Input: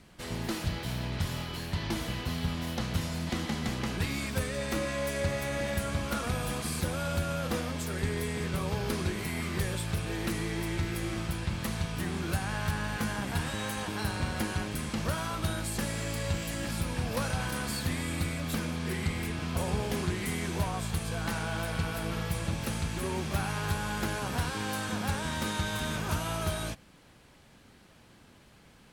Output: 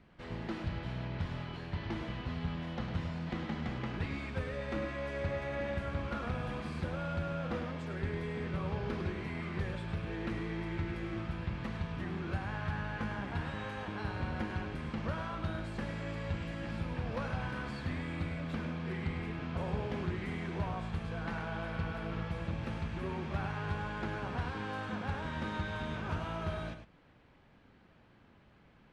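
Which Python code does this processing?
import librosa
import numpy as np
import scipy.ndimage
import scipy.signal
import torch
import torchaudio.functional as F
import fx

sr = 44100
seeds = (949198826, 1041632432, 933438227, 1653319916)

y = scipy.signal.sosfilt(scipy.signal.butter(2, 2500.0, 'lowpass', fs=sr, output='sos'), x)
y = y + 10.0 ** (-9.0 / 20.0) * np.pad(y, (int(103 * sr / 1000.0), 0))[:len(y)]
y = F.gain(torch.from_numpy(y), -5.0).numpy()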